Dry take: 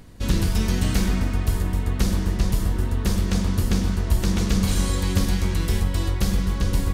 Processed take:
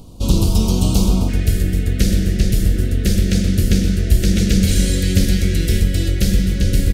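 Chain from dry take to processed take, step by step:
Butterworth band-reject 1,800 Hz, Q 0.9, from 0:01.28 970 Hz
single-tap delay 124 ms −13 dB
level +6.5 dB

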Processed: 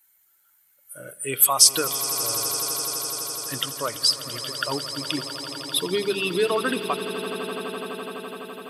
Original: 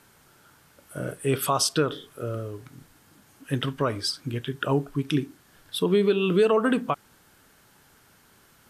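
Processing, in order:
spectral dynamics exaggerated over time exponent 1.5
RIAA equalisation recording
mains-hum notches 50/100/150/200 Hz
on a send: echo that builds up and dies away 84 ms, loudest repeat 8, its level −15.5 dB
on the sum: level +2 dB

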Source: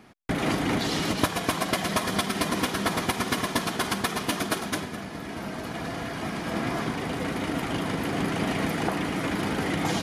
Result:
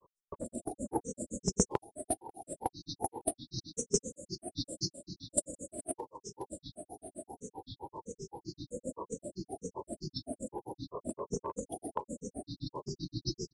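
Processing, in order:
feedback delay with all-pass diffusion 937 ms, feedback 46%, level −14.5 dB
wrong playback speed 45 rpm record played at 33 rpm
linear-phase brick-wall band-stop 620–6,400 Hz
low-shelf EQ 420 Hz −11.5 dB
noise gate −32 dBFS, range −13 dB
high-shelf EQ 7,400 Hz +11.5 dB
comb filter 3.8 ms, depth 73%
downward compressor 8 to 1, threshold −36 dBFS, peak gain reduction 14 dB
granular cloud, grains 7.7 per second, pitch spread up and down by 12 semitones
downsampling to 22,050 Hz
level +11.5 dB

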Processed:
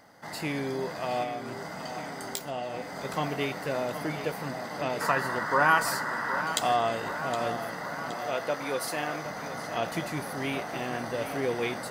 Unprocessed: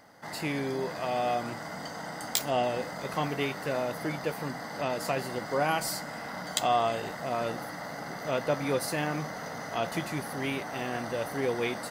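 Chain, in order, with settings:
0:01.23–0:02.95: downward compressor 3 to 1, threshold −34 dBFS, peak gain reduction 9 dB
0:05.01–0:06.41: gain on a spectral selection 860–2,000 Hz +11 dB
0:08.15–0:09.26: high-pass filter 460 Hz 6 dB per octave
on a send: tape delay 768 ms, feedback 73%, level −10 dB, low-pass 5,300 Hz

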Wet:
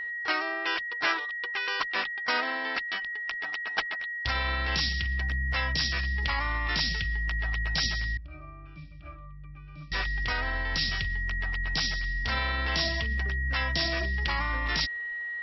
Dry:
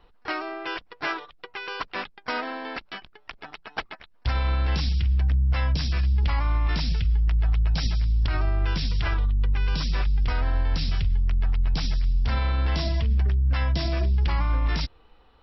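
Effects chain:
spectral tilt +2.5 dB per octave
steady tone 1,900 Hz −32 dBFS
0:08.17–0:09.92: resonances in every octave D, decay 0.22 s

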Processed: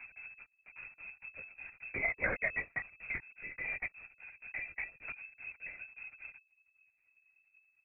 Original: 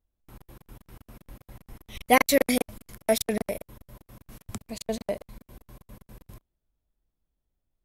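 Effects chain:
slices reordered back to front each 107 ms, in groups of 6
comb filter 5.8 ms, depth 70%
multi-voice chorus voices 2, 0.46 Hz, delay 22 ms, depth 4.9 ms
voice inversion scrambler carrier 2,600 Hz
linear-prediction vocoder at 8 kHz whisper
multiband upward and downward compressor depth 40%
level −7 dB

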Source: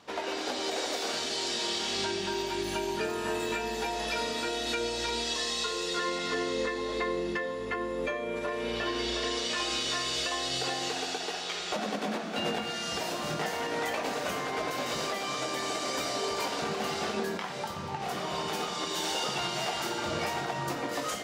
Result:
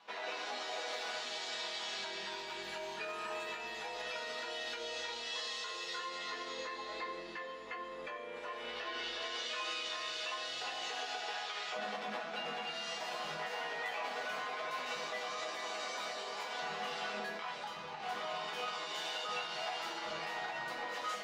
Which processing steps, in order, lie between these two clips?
three-way crossover with the lows and the highs turned down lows −15 dB, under 540 Hz, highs −14 dB, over 4,700 Hz
brickwall limiter −27.5 dBFS, peak gain reduction 6.5 dB
resonators tuned to a chord E3 major, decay 0.24 s
level +12 dB

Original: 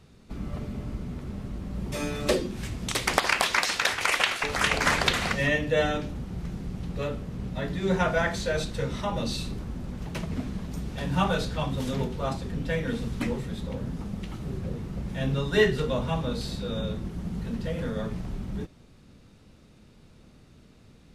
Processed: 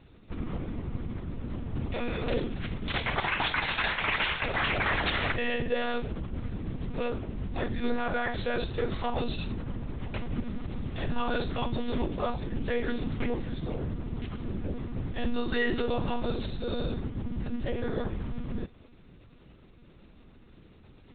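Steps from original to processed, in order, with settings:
one-pitch LPC vocoder at 8 kHz 240 Hz
brickwall limiter −18 dBFS, peak gain reduction 10 dB

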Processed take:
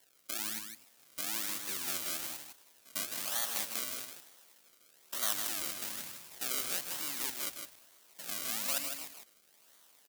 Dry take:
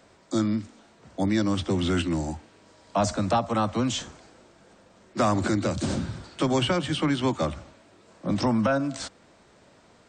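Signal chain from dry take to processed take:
spectrum averaged block by block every 100 ms
in parallel at +1 dB: downward compressor, threshold −32 dBFS, peak gain reduction 12.5 dB
on the sum: sample-and-hold swept by an LFO 34×, swing 100% 1.1 Hz
first difference
on a send: single-tap delay 158 ms −6.5 dB
on the sum: level −1.5 dB

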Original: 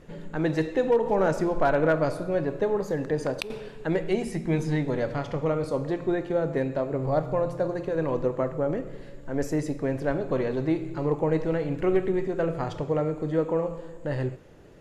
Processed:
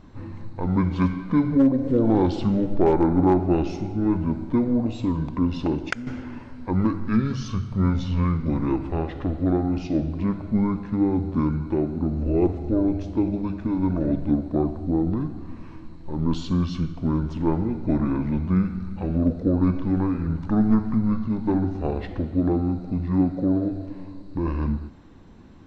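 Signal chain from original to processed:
wrong playback speed 78 rpm record played at 45 rpm
level +3.5 dB

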